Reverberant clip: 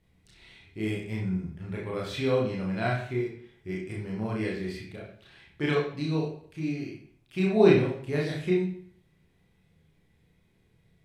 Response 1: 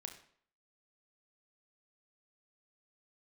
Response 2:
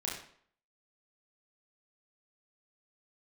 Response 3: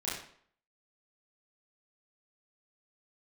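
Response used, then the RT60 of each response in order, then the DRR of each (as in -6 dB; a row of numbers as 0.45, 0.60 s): 2; 0.55, 0.60, 0.60 s; 4.5, -4.0, -8.5 dB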